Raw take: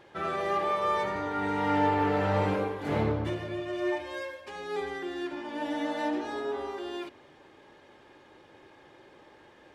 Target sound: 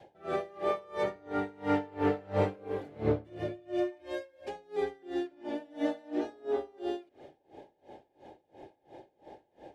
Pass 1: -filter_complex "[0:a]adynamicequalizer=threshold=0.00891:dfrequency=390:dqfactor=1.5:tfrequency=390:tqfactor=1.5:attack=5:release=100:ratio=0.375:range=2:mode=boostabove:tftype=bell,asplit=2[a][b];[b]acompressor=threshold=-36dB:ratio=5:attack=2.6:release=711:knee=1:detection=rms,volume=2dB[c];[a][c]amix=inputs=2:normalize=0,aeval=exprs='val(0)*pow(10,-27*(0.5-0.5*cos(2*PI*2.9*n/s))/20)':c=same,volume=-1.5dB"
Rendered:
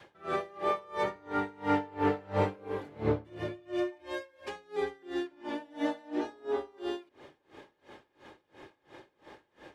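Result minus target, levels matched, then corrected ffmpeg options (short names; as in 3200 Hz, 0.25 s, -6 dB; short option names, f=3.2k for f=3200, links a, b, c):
1000 Hz band +3.0 dB
-filter_complex "[0:a]adynamicequalizer=threshold=0.00891:dfrequency=390:dqfactor=1.5:tfrequency=390:tqfactor=1.5:attack=5:release=100:ratio=0.375:range=2:mode=boostabove:tftype=bell,asplit=2[a][b];[b]acompressor=threshold=-36dB:ratio=5:attack=2.6:release=711:knee=1:detection=rms,lowpass=f=770:t=q:w=3.8,volume=2dB[c];[a][c]amix=inputs=2:normalize=0,aeval=exprs='val(0)*pow(10,-27*(0.5-0.5*cos(2*PI*2.9*n/s))/20)':c=same,volume=-1.5dB"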